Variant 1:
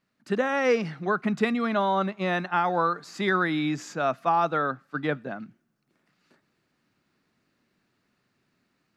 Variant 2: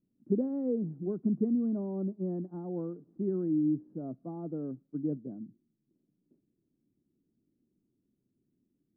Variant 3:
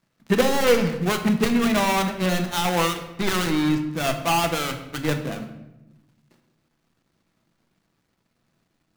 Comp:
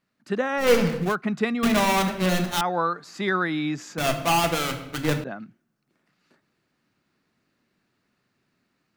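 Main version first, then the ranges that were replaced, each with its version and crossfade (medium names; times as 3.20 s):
1
0.65–1.08 s: from 3, crossfade 0.16 s
1.63–2.61 s: from 3
3.98–5.24 s: from 3
not used: 2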